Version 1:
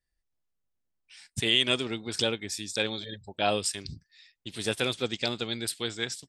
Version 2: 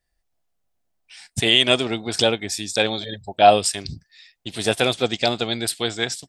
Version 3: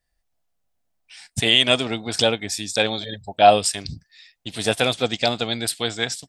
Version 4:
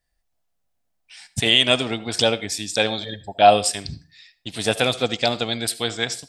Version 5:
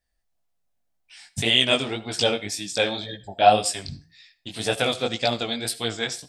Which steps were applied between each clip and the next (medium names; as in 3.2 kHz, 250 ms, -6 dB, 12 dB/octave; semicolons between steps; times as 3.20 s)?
peaking EQ 700 Hz +10 dB 0.48 oct; trim +7.5 dB
peaking EQ 370 Hz -7 dB 0.21 oct
reverberation RT60 0.35 s, pre-delay 65 ms, DRR 16.5 dB
chorus 1.9 Hz, delay 15.5 ms, depth 6.3 ms